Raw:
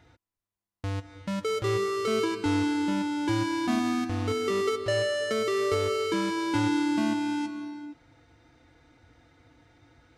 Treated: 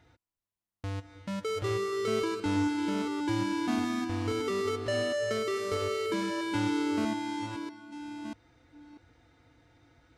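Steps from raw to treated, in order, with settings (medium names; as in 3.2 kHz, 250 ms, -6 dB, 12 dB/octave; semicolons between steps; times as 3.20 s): chunks repeated in reverse 641 ms, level -8 dB; trim -4 dB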